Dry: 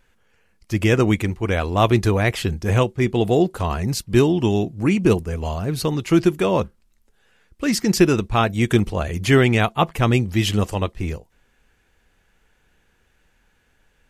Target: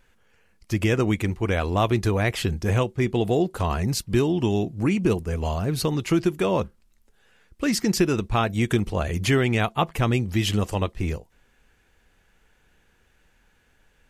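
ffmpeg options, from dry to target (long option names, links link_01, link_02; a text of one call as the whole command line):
ffmpeg -i in.wav -af "acompressor=threshold=-21dB:ratio=2" out.wav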